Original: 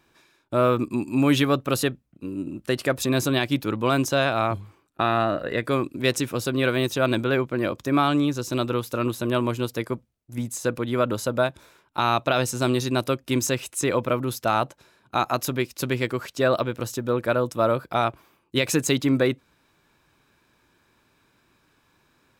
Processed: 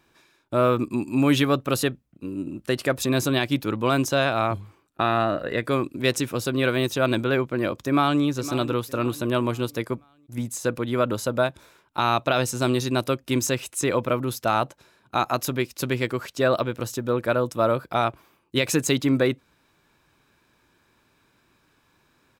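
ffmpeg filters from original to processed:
-filter_complex "[0:a]asplit=2[a][b];[b]afade=t=in:st=7.77:d=0.01,afade=t=out:st=8.22:d=0.01,aecho=0:1:510|1020|1530|2040:0.199526|0.0798105|0.0319242|0.0127697[c];[a][c]amix=inputs=2:normalize=0"

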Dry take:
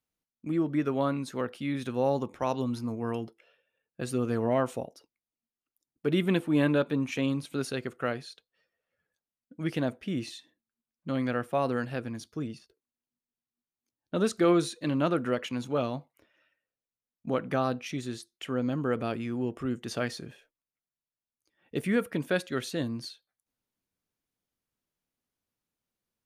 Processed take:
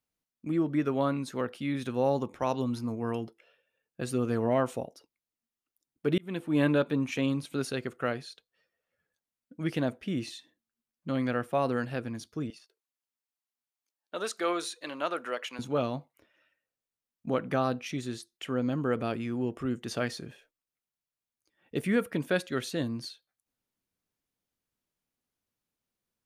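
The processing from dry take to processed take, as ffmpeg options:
-filter_complex "[0:a]asettb=1/sr,asplit=3[a][b][c];[a]atrim=end=12.504[d];[b]atrim=start=12.5:end=15.59,asetpts=PTS-STARTPTS,afade=t=in:d=0.004:c=qsin,afade=t=out:st=3.086:d=0.004:c=qsin,highpass=620[e];[c]atrim=start=15.586[f];[d][e]acrossfade=d=0.004:c1=hsin:c2=qsin[g];[g][f]acrossfade=d=0.004:c1=qsin:c2=hsin,asplit=2[h][i];[h]atrim=end=6.18,asetpts=PTS-STARTPTS,afade=t=out:st=6.176:d=0.004:c=hsin[j];[i]atrim=start=6.18,asetpts=PTS-STARTPTS,afade=t=in:d=0.45[k];[j][k]concat=n=2:v=0:a=1"

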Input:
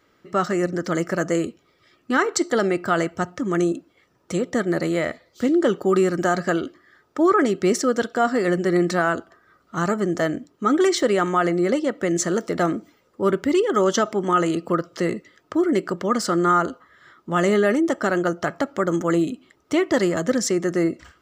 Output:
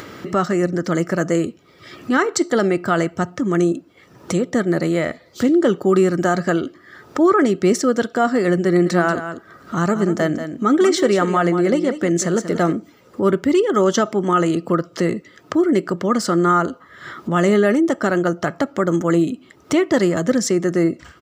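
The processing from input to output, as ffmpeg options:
-filter_complex "[0:a]asplit=3[a][b][c];[a]afade=t=out:st=8.85:d=0.02[d];[b]aecho=1:1:186:0.299,afade=t=in:st=8.85:d=0.02,afade=t=out:st=12.74:d=0.02[e];[c]afade=t=in:st=12.74:d=0.02[f];[d][e][f]amix=inputs=3:normalize=0,highpass=100,lowshelf=f=210:g=7.5,acompressor=mode=upward:threshold=-20dB:ratio=2.5,volume=1.5dB"

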